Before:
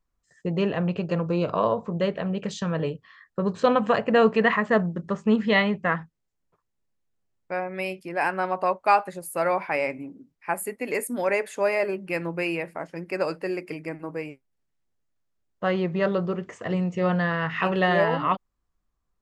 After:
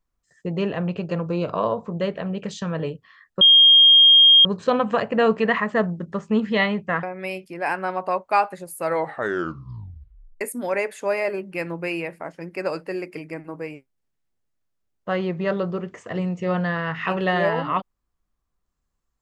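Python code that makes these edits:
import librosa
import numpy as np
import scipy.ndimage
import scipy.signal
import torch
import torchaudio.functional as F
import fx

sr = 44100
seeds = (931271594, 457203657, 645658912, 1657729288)

y = fx.edit(x, sr, fx.insert_tone(at_s=3.41, length_s=1.04, hz=3230.0, db=-8.5),
    fx.cut(start_s=5.99, length_s=1.59),
    fx.tape_stop(start_s=9.37, length_s=1.59), tone=tone)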